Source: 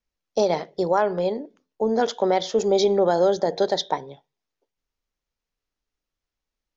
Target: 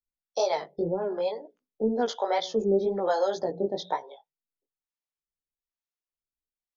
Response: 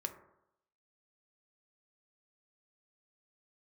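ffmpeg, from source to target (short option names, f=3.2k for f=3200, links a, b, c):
-filter_complex "[0:a]acrossover=split=480[a][b];[a]aeval=exprs='val(0)*(1-1/2+1/2*cos(2*PI*1.1*n/s))':c=same[c];[b]aeval=exprs='val(0)*(1-1/2-1/2*cos(2*PI*1.1*n/s))':c=same[d];[c][d]amix=inputs=2:normalize=0,bandreject=f=60:t=h:w=6,bandreject=f=120:t=h:w=6,bandreject=f=180:t=h:w=6,asplit=2[e][f];[f]acompressor=threshold=-37dB:ratio=6,volume=2dB[g];[e][g]amix=inputs=2:normalize=0,afftdn=nr=16:nf=-46,flanger=delay=16:depth=4.6:speed=2"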